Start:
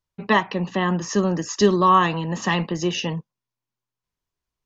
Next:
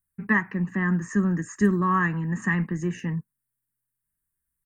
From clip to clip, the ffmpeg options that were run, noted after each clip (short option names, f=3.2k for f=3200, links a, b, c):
-af "firequalizer=gain_entry='entry(210,0);entry(580,-19);entry(1700,3);entry(3300,-29);entry(5600,-22);entry(8600,13)':delay=0.05:min_phase=1"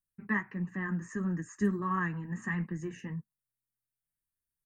-af "flanger=delay=5.2:depth=5.1:regen=-42:speed=1.5:shape=triangular,volume=-5.5dB"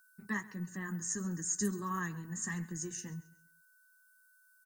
-af "aeval=exprs='val(0)+0.00112*sin(2*PI*1500*n/s)':c=same,aexciter=amount=7.7:drive=8.5:freq=3.8k,aecho=1:1:135|270|405:0.1|0.035|0.0123,volume=-5.5dB"